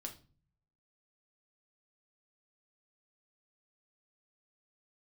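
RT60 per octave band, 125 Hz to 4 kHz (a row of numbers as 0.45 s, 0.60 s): 1.0 s, 0.70 s, 0.40 s, 0.35 s, 0.30 s, 0.30 s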